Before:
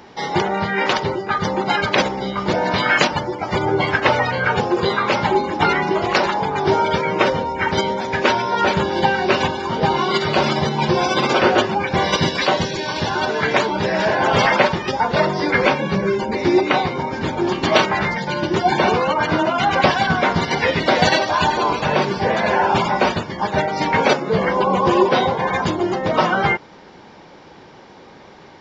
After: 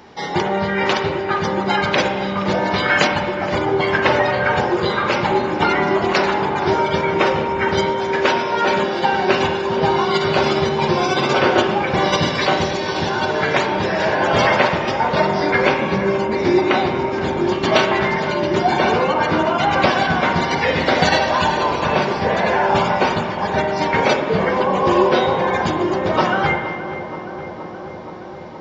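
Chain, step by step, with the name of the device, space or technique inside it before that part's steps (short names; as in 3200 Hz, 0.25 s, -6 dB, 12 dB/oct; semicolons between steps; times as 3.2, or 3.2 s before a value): 7.86–9.13 HPF 230 Hz 12 dB/oct; dub delay into a spring reverb (darkening echo 0.472 s, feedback 80%, low-pass 2200 Hz, level -12.5 dB; spring tank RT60 1.4 s, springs 39/51 ms, chirp 75 ms, DRR 5 dB); gain -1 dB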